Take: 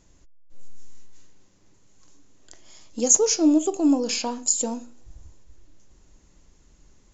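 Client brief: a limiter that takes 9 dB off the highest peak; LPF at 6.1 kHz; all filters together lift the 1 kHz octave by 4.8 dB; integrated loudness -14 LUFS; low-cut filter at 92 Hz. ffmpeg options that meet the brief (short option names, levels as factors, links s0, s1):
-af "highpass=92,lowpass=6100,equalizer=f=1000:t=o:g=6,volume=4.22,alimiter=limit=0.596:level=0:latency=1"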